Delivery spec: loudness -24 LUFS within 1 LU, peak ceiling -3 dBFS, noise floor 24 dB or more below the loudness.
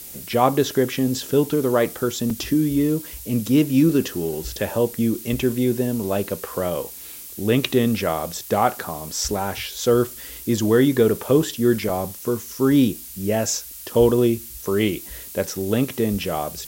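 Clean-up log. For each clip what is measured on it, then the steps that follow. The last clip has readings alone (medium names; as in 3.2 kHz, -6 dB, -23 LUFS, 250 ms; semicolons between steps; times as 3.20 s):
dropouts 2; longest dropout 3.3 ms; noise floor -38 dBFS; noise floor target -46 dBFS; loudness -21.5 LUFS; peak level -2.5 dBFS; loudness target -24.0 LUFS
-> interpolate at 2.30/11.89 s, 3.3 ms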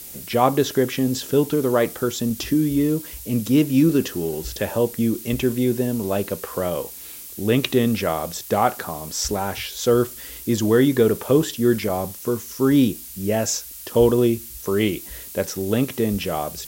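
dropouts 0; noise floor -38 dBFS; noise floor target -46 dBFS
-> noise print and reduce 8 dB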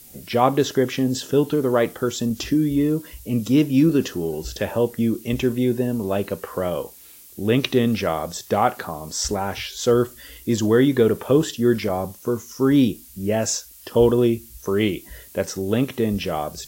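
noise floor -46 dBFS; loudness -21.5 LUFS; peak level -2.5 dBFS; loudness target -24.0 LUFS
-> trim -2.5 dB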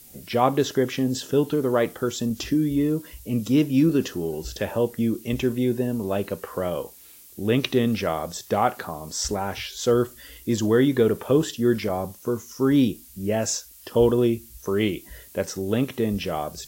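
loudness -24.0 LUFS; peak level -5.0 dBFS; noise floor -48 dBFS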